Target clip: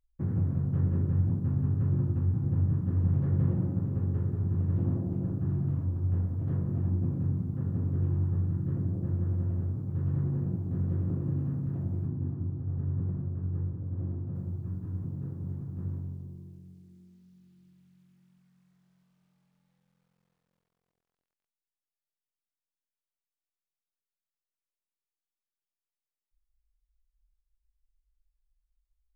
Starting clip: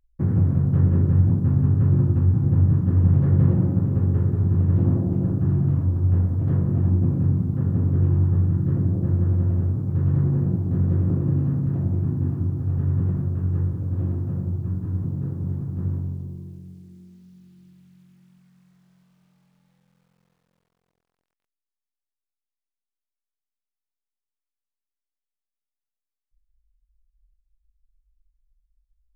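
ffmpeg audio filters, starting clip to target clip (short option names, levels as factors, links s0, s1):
-filter_complex "[0:a]asplit=3[s0][s1][s2];[s0]afade=t=out:st=12.06:d=0.02[s3];[s1]lowpass=f=1200:p=1,afade=t=in:st=12.06:d=0.02,afade=t=out:st=14.34:d=0.02[s4];[s2]afade=t=in:st=14.34:d=0.02[s5];[s3][s4][s5]amix=inputs=3:normalize=0,volume=0.355"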